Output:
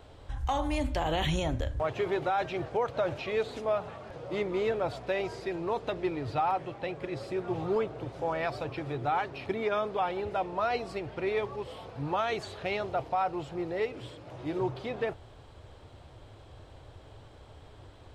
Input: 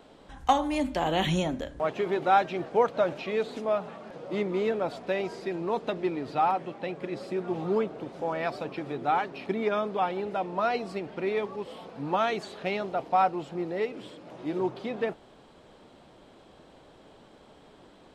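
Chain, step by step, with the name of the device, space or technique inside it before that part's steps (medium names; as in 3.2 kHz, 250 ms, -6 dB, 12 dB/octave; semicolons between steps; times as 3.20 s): car stereo with a boomy subwoofer (resonant low shelf 140 Hz +11 dB, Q 3; peak limiter -20 dBFS, peak gain reduction 10 dB)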